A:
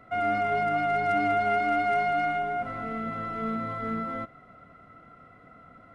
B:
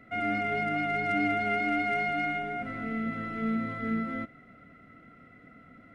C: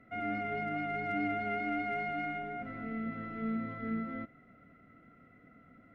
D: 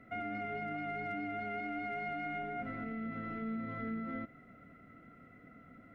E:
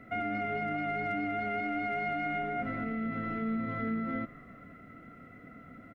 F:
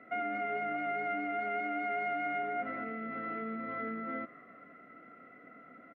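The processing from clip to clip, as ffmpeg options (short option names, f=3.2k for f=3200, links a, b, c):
-af "equalizer=f=250:t=o:w=1:g=7,equalizer=f=1k:t=o:w=1:g=-11,equalizer=f=2k:t=o:w=1:g=8,volume=-2.5dB"
-af "highshelf=f=3.6k:g=-12,volume=-5dB"
-af "alimiter=level_in=10.5dB:limit=-24dB:level=0:latency=1:release=89,volume=-10.5dB,volume=2.5dB"
-filter_complex "[0:a]asplit=4[a][b][c][d];[b]adelay=176,afreqshift=-99,volume=-24dB[e];[c]adelay=352,afreqshift=-198,volume=-29.7dB[f];[d]adelay=528,afreqshift=-297,volume=-35.4dB[g];[a][e][f][g]amix=inputs=4:normalize=0,volume=6dB"
-af "highpass=350,lowpass=2.5k"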